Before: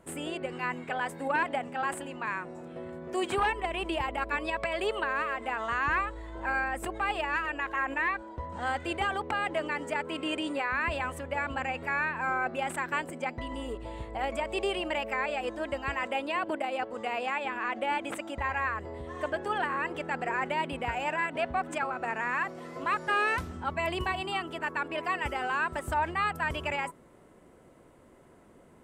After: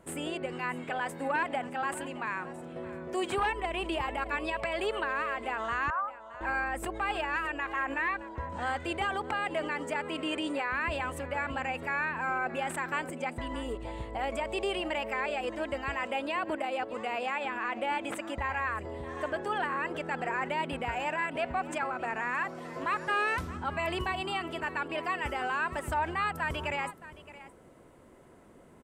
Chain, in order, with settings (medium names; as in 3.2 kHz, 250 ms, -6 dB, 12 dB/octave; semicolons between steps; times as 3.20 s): 5.90–6.41 s: Chebyshev band-pass 560–1500 Hz, order 5; delay 619 ms -18.5 dB; in parallel at -1.5 dB: peak limiter -27.5 dBFS, peak gain reduction 9.5 dB; on the sum: trim -4.5 dB